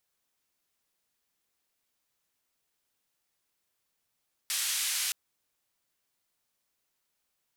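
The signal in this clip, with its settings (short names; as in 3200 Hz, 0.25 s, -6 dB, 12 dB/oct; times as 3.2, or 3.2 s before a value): noise band 2000–11000 Hz, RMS -31 dBFS 0.62 s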